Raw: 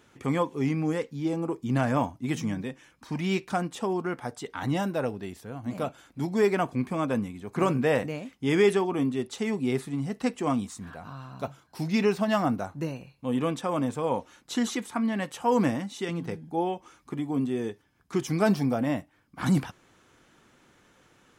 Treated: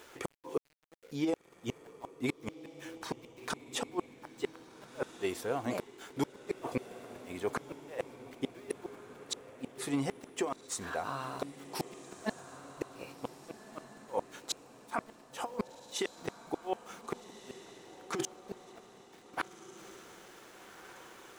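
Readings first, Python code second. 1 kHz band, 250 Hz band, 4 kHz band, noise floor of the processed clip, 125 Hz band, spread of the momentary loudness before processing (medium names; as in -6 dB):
-9.5 dB, -13.5 dB, -4.5 dB, -58 dBFS, -17.0 dB, 12 LU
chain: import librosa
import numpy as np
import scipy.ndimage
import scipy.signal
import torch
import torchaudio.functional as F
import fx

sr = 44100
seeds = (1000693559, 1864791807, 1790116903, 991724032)

y = fx.low_shelf_res(x, sr, hz=290.0, db=-11.5, q=1.5)
y = fx.over_compress(y, sr, threshold_db=-31.0, ratio=-0.5)
y = fx.gate_flip(y, sr, shuts_db=-23.0, range_db=-37)
y = np.where(np.abs(y) >= 10.0 ** (-58.0 / 20.0), y, 0.0)
y = fx.echo_diffused(y, sr, ms=1565, feedback_pct=50, wet_db=-13.0)
y = y * librosa.db_to_amplitude(2.5)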